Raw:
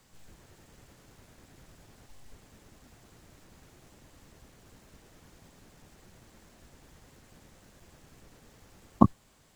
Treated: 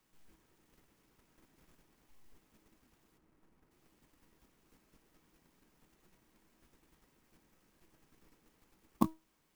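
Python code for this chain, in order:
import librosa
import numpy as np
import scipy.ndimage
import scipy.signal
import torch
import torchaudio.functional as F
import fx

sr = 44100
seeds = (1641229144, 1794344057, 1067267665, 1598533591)

p1 = fx.median_filter(x, sr, points=15, at=(3.17, 3.7), fade=0.02)
p2 = fx.graphic_eq_15(p1, sr, hz=(100, 630, 1600, 4000), db=(-10, -8, -4, -7))
p3 = fx.level_steps(p2, sr, step_db=19)
p4 = p2 + (p3 * 10.0 ** (-1.0 / 20.0))
p5 = fx.low_shelf(p4, sr, hz=150.0, db=-6.0)
p6 = fx.comb_fb(p5, sr, f0_hz=320.0, decay_s=0.25, harmonics='all', damping=0.0, mix_pct=60)
p7 = fx.clock_jitter(p6, sr, seeds[0], jitter_ms=0.034)
y = p7 * 10.0 ** (-4.0 / 20.0)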